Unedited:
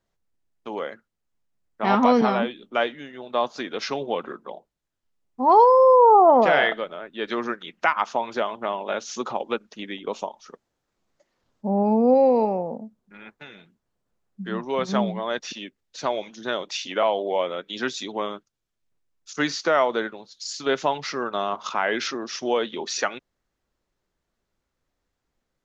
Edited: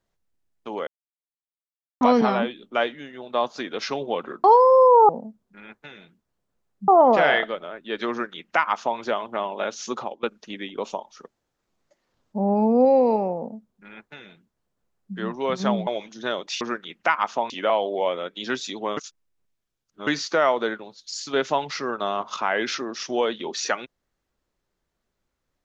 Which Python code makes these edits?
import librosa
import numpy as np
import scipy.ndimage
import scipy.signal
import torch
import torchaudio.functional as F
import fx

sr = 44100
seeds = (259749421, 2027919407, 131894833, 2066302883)

y = fx.edit(x, sr, fx.silence(start_s=0.87, length_s=1.14),
    fx.cut(start_s=4.44, length_s=1.08),
    fx.duplicate(start_s=7.39, length_s=0.89, to_s=16.83),
    fx.fade_out_to(start_s=9.26, length_s=0.26, floor_db=-19.5),
    fx.duplicate(start_s=12.66, length_s=1.79, to_s=6.17),
    fx.cut(start_s=15.16, length_s=0.93),
    fx.reverse_span(start_s=18.3, length_s=1.1), tone=tone)